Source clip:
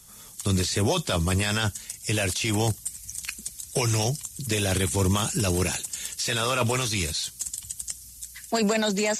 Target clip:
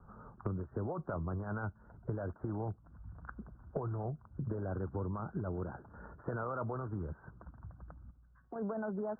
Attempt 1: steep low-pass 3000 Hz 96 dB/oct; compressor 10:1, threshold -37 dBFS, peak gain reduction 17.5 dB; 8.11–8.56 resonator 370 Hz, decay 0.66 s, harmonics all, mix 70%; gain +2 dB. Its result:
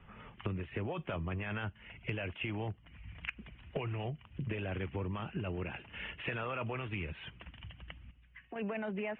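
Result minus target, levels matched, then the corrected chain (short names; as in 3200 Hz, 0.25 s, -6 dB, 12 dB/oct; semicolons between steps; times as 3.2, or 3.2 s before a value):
2000 Hz band +9.0 dB
steep low-pass 1500 Hz 96 dB/oct; compressor 10:1, threshold -37 dBFS, peak gain reduction 17.5 dB; 8.11–8.56 resonator 370 Hz, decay 0.66 s, harmonics all, mix 70%; gain +2 dB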